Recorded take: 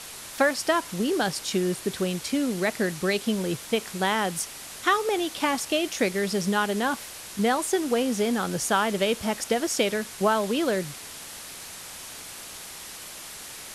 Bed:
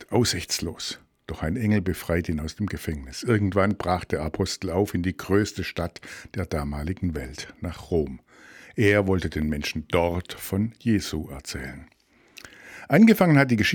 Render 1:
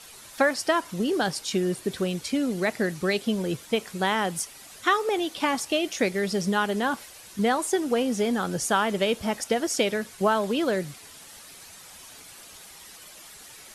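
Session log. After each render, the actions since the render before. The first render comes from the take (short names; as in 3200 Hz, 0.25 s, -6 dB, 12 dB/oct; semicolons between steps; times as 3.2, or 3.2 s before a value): denoiser 9 dB, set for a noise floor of -41 dBFS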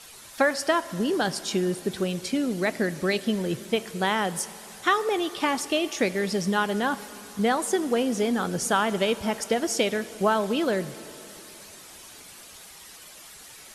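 plate-style reverb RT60 3.7 s, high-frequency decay 0.85×, DRR 15.5 dB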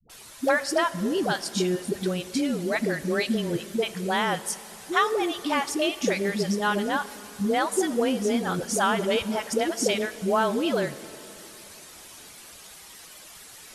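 dispersion highs, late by 97 ms, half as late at 400 Hz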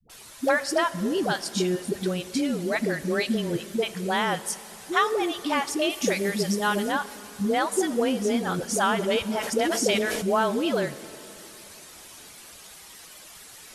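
5.9–6.92 high shelf 7900 Hz +9 dB; 9.39–10.3 sustainer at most 28 dB/s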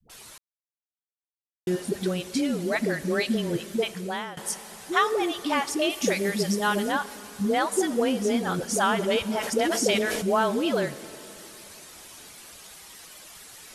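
0.38–1.67 mute; 3.85–4.37 fade out, to -19 dB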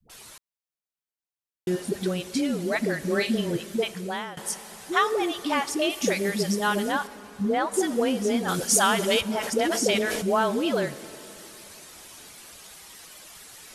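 2.99–3.51 doubler 40 ms -8 dB; 7.07–7.74 high shelf 3400 Hz -11 dB; 8.48–9.21 high shelf 3000 Hz +10.5 dB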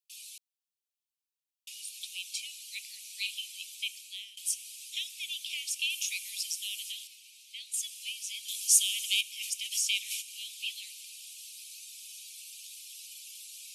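steep high-pass 2400 Hz 96 dB/oct; dynamic EQ 4600 Hz, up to -4 dB, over -44 dBFS, Q 2.6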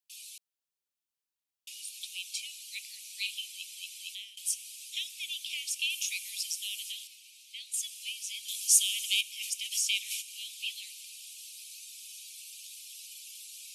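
3.46 stutter in place 0.23 s, 3 plays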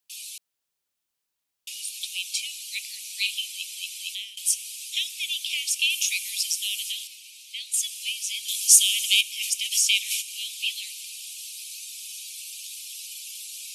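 gain +8.5 dB; limiter -2 dBFS, peak gain reduction 2.5 dB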